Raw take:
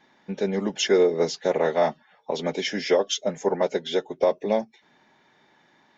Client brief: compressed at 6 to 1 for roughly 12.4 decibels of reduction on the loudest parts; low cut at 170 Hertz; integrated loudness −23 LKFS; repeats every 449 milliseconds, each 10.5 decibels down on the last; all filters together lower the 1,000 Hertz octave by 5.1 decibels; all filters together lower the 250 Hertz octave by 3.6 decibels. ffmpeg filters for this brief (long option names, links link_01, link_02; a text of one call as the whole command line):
ffmpeg -i in.wav -af "highpass=170,equalizer=frequency=250:width_type=o:gain=-3.5,equalizer=frequency=1000:width_type=o:gain=-7,acompressor=threshold=-31dB:ratio=6,aecho=1:1:449|898|1347:0.299|0.0896|0.0269,volume=12.5dB" out.wav